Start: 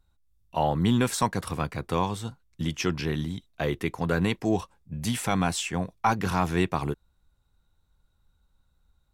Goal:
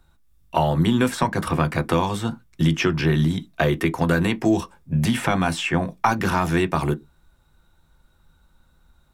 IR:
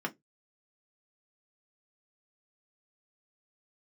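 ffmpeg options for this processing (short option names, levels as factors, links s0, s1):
-filter_complex "[0:a]acrossover=split=110|3700[s0][s1][s2];[s0]acompressor=threshold=0.0112:ratio=4[s3];[s1]acompressor=threshold=0.0251:ratio=4[s4];[s2]acompressor=threshold=0.00355:ratio=4[s5];[s3][s4][s5]amix=inputs=3:normalize=0,asplit=2[s6][s7];[1:a]atrim=start_sample=2205[s8];[s7][s8]afir=irnorm=-1:irlink=0,volume=0.531[s9];[s6][s9]amix=inputs=2:normalize=0,volume=2.82"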